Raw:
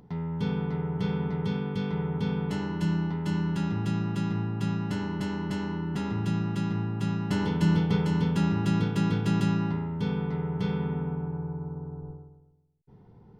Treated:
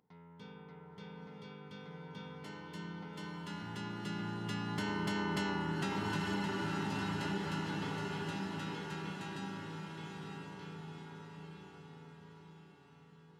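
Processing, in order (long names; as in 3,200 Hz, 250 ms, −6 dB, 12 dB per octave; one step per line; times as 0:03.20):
source passing by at 0:05.45, 9 m/s, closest 2 metres
low-pass filter 1,600 Hz 6 dB per octave
spectral tilt +4 dB per octave
feedback delay with all-pass diffusion 931 ms, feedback 50%, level −4 dB
downward compressor 6 to 1, threshold −45 dBFS, peak gain reduction 10.5 dB
level +12.5 dB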